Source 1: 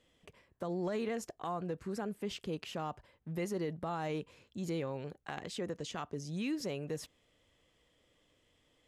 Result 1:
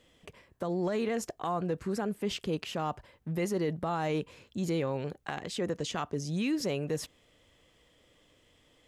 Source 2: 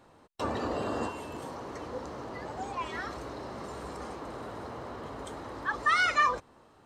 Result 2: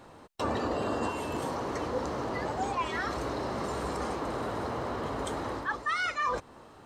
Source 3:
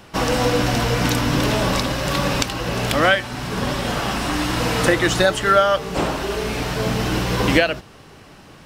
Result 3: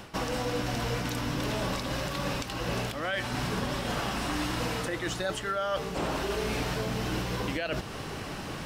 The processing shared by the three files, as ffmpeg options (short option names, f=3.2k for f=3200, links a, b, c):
-af "areverse,acompressor=threshold=-32dB:ratio=16,areverse,alimiter=level_in=4dB:limit=-24dB:level=0:latency=1:release=260,volume=-4dB,volume=7dB"